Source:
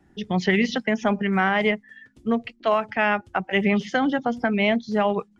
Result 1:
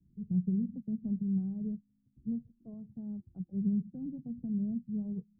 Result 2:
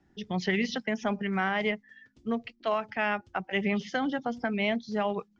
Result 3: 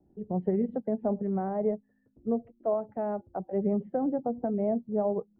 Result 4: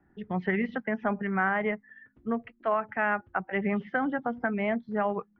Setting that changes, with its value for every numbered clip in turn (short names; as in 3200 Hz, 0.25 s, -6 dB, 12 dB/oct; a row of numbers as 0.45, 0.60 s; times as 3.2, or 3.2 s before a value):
ladder low-pass, frequency: 210, 7000, 720, 2000 Hz